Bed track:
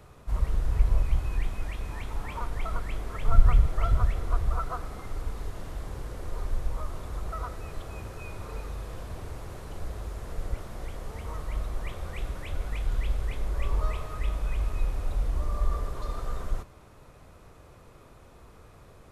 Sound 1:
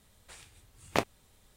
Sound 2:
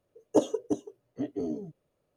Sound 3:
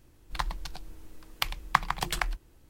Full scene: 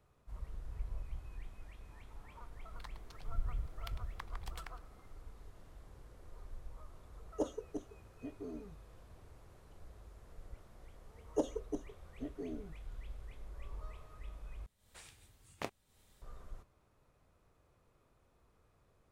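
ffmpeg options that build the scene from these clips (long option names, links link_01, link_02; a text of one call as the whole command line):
ffmpeg -i bed.wav -i cue0.wav -i cue1.wav -i cue2.wav -filter_complex "[2:a]asplit=2[link_01][link_02];[0:a]volume=-19dB[link_03];[3:a]acompressor=threshold=-35dB:ratio=2:attack=4.9:release=265:knee=1:detection=peak[link_04];[1:a]dynaudnorm=framelen=120:gausssize=3:maxgain=13.5dB[link_05];[link_03]asplit=2[link_06][link_07];[link_06]atrim=end=14.664[link_08];[link_05]atrim=end=1.56,asetpts=PTS-STARTPTS,volume=-17.5dB[link_09];[link_07]atrim=start=16.216[link_10];[link_04]atrim=end=2.69,asetpts=PTS-STARTPTS,volume=-15dB,afade=type=in:duration=0.004:curve=hsin,afade=type=out:start_time=2.686:duration=0.004:curve=hsin,adelay=2450[link_11];[link_01]atrim=end=2.16,asetpts=PTS-STARTPTS,volume=-13dB,afade=type=in:duration=0.004:curve=hsin,afade=type=out:start_time=2.156:duration=0.004:curve=hsin,adelay=7040[link_12];[link_02]atrim=end=2.16,asetpts=PTS-STARTPTS,volume=-10.5dB,afade=type=in:duration=0.004:curve=hsin,afade=type=out:start_time=2.156:duration=0.004:curve=hsin,adelay=11020[link_13];[link_08][link_09]acrossfade=duration=0.004:curve1=hsin:curve2=hsin[link_14];[link_14][link_10]acrossfade=duration=0.004:curve1=hsin:curve2=hsin[link_15];[link_15][link_11][link_12][link_13]amix=inputs=4:normalize=0" out.wav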